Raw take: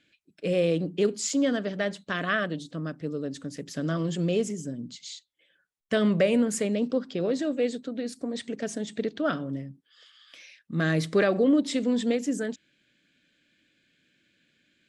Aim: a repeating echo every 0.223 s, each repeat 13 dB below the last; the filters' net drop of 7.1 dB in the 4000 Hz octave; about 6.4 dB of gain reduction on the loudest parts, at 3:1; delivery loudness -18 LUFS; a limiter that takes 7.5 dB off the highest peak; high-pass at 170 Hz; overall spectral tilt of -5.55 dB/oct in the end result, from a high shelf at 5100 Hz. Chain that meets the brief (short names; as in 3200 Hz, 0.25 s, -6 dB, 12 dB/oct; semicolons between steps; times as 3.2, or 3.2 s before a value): HPF 170 Hz; bell 4000 Hz -8 dB; high shelf 5100 Hz -4 dB; compressor 3:1, threshold -27 dBFS; limiter -24.5 dBFS; feedback echo 0.223 s, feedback 22%, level -13 dB; gain +16.5 dB